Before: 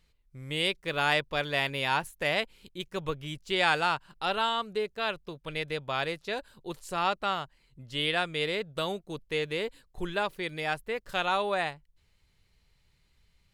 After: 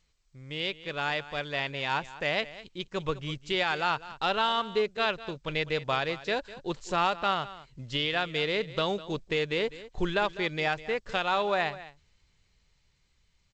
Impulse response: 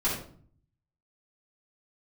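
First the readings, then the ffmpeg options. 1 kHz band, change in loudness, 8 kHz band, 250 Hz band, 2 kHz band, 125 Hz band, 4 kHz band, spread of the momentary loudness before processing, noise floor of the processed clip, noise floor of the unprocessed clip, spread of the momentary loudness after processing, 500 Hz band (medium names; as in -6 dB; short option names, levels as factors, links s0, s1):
+0.5 dB, +0.5 dB, -3.0 dB, +2.0 dB, -0.5 dB, +1.5 dB, 0.0 dB, 11 LU, -69 dBFS, -69 dBFS, 8 LU, +1.5 dB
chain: -filter_complex "[0:a]acrusher=bits=8:mode=log:mix=0:aa=0.000001,dynaudnorm=f=520:g=11:m=3.55,alimiter=limit=0.266:level=0:latency=1:release=421,asplit=2[s0][s1];[s1]aecho=0:1:202:0.15[s2];[s0][s2]amix=inputs=2:normalize=0,volume=0.631" -ar 16000 -c:a g722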